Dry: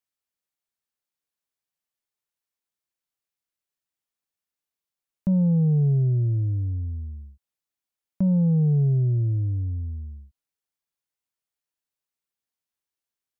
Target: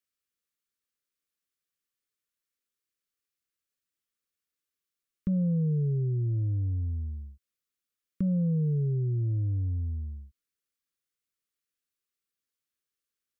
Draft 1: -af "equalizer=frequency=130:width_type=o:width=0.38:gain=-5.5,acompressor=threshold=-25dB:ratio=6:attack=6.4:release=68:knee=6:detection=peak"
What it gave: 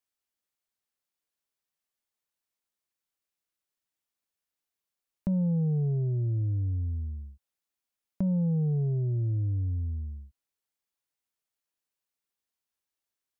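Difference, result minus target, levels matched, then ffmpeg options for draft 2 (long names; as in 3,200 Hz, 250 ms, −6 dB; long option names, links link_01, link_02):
1,000 Hz band +16.5 dB
-af "equalizer=frequency=130:width_type=o:width=0.38:gain=-5.5,acompressor=threshold=-25dB:ratio=6:attack=6.4:release=68:knee=6:detection=peak,asuperstop=centerf=780:order=20:qfactor=1.5"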